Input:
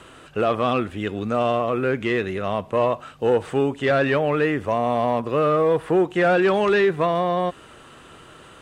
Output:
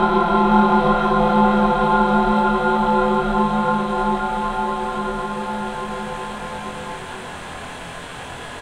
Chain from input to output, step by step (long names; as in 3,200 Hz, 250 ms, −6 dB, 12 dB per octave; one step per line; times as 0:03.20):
extreme stretch with random phases 13×, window 1.00 s, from 0:07.33
in parallel at +3 dB: downward compressor, threshold −37 dBFS, peak gain reduction 17.5 dB
on the sum: ring modulation 330 Hz
mains-hum notches 50/100/150/200 Hz
double-tracking delay 24 ms −3 dB
on a send: echo with a time of its own for lows and highs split 750 Hz, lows 139 ms, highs 517 ms, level −6 dB
on the sum: level +5 dB